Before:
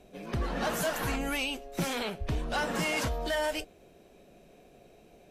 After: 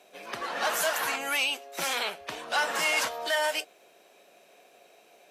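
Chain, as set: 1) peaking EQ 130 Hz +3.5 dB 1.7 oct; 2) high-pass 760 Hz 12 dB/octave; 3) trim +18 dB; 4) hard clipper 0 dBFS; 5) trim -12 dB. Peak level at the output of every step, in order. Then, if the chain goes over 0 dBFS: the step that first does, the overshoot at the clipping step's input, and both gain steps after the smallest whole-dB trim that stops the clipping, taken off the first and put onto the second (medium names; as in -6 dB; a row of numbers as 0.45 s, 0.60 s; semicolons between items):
-20.5 dBFS, -21.0 dBFS, -3.0 dBFS, -3.0 dBFS, -15.0 dBFS; nothing clips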